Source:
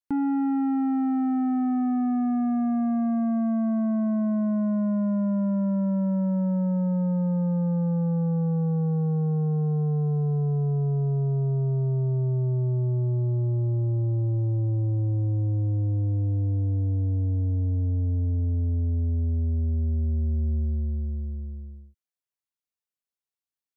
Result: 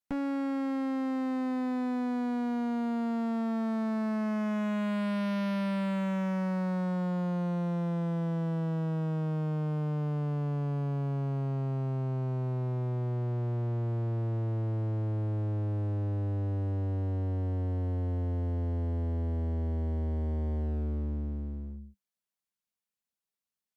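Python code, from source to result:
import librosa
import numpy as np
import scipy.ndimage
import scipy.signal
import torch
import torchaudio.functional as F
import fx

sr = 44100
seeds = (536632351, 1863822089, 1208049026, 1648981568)

y = fx.graphic_eq_31(x, sr, hz=(125, 200, 315), db=(-4, 11, -5))
y = fx.clip_asym(y, sr, top_db=-39.0, bottom_db=-25.5)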